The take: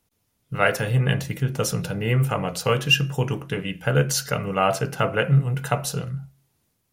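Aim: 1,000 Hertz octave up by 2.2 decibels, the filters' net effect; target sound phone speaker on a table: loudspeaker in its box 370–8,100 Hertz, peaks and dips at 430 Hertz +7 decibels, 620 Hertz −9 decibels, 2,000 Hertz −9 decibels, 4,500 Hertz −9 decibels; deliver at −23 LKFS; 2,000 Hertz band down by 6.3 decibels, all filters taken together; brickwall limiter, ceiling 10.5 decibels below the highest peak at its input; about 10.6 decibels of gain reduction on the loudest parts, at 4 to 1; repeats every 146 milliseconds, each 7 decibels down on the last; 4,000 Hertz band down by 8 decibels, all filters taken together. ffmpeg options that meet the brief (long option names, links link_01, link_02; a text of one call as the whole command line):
ffmpeg -i in.wav -af "equalizer=frequency=1000:width_type=o:gain=8.5,equalizer=frequency=2000:width_type=o:gain=-8.5,equalizer=frequency=4000:width_type=o:gain=-5,acompressor=threshold=-26dB:ratio=4,alimiter=limit=-21dB:level=0:latency=1,highpass=frequency=370:width=0.5412,highpass=frequency=370:width=1.3066,equalizer=frequency=430:width_type=q:width=4:gain=7,equalizer=frequency=620:width_type=q:width=4:gain=-9,equalizer=frequency=2000:width_type=q:width=4:gain=-9,equalizer=frequency=4500:width_type=q:width=4:gain=-9,lowpass=frequency=8100:width=0.5412,lowpass=frequency=8100:width=1.3066,aecho=1:1:146|292|438|584|730:0.447|0.201|0.0905|0.0407|0.0183,volume=12dB" out.wav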